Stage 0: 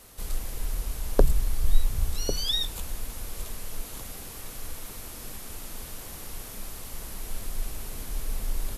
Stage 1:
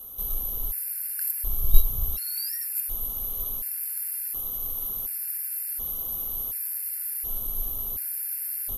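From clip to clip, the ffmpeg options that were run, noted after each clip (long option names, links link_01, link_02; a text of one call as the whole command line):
ffmpeg -i in.wav -af "aexciter=amount=8.9:drive=9.3:freq=11000,agate=range=-7dB:threshold=-13dB:ratio=16:detection=peak,afftfilt=real='re*gt(sin(2*PI*0.69*pts/sr)*(1-2*mod(floor(b*sr/1024/1400),2)),0)':imag='im*gt(sin(2*PI*0.69*pts/sr)*(1-2*mod(floor(b*sr/1024/1400),2)),0)':win_size=1024:overlap=0.75,volume=4dB" out.wav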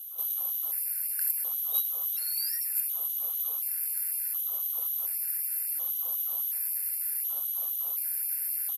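ffmpeg -i in.wav -filter_complex "[0:a]asplit=2[link_01][link_02];[link_02]adelay=74,lowpass=frequency=1600:poles=1,volume=-9dB,asplit=2[link_03][link_04];[link_04]adelay=74,lowpass=frequency=1600:poles=1,volume=0.38,asplit=2[link_05][link_06];[link_06]adelay=74,lowpass=frequency=1600:poles=1,volume=0.38,asplit=2[link_07][link_08];[link_08]adelay=74,lowpass=frequency=1600:poles=1,volume=0.38[link_09];[link_01][link_03][link_05][link_07][link_09]amix=inputs=5:normalize=0,afftfilt=real='re*gte(b*sr/1024,410*pow(2200/410,0.5+0.5*sin(2*PI*3.9*pts/sr)))':imag='im*gte(b*sr/1024,410*pow(2200/410,0.5+0.5*sin(2*PI*3.9*pts/sr)))':win_size=1024:overlap=0.75" out.wav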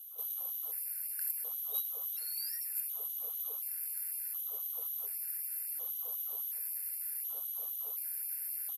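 ffmpeg -i in.wav -af "equalizer=frequency=410:width_type=o:width=0.58:gain=14.5,volume=-7.5dB" out.wav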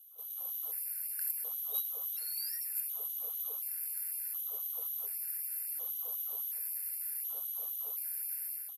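ffmpeg -i in.wav -af "dynaudnorm=framelen=140:gausssize=5:maxgain=8.5dB,volume=-8dB" out.wav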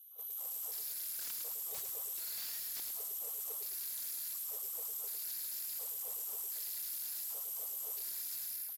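ffmpeg -i in.wav -filter_complex "[0:a]acrossover=split=1500[link_01][link_02];[link_01]acrusher=bits=2:mode=log:mix=0:aa=0.000001[link_03];[link_02]aeval=exprs='0.0133*(abs(mod(val(0)/0.0133+3,4)-2)-1)':channel_layout=same[link_04];[link_03][link_04]amix=inputs=2:normalize=0,asplit=5[link_05][link_06][link_07][link_08][link_09];[link_06]adelay=106,afreqshift=-30,volume=-6.5dB[link_10];[link_07]adelay=212,afreqshift=-60,volume=-15.1dB[link_11];[link_08]adelay=318,afreqshift=-90,volume=-23.8dB[link_12];[link_09]adelay=424,afreqshift=-120,volume=-32.4dB[link_13];[link_05][link_10][link_11][link_12][link_13]amix=inputs=5:normalize=0" out.wav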